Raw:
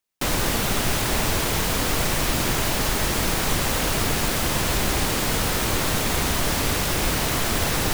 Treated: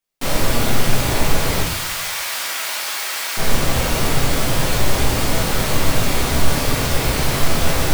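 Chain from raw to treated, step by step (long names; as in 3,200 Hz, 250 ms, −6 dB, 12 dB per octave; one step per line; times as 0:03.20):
0:01.60–0:03.37: high-pass filter 1,200 Hz 12 dB per octave
rectangular room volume 130 cubic metres, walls mixed, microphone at 1.7 metres
level −4 dB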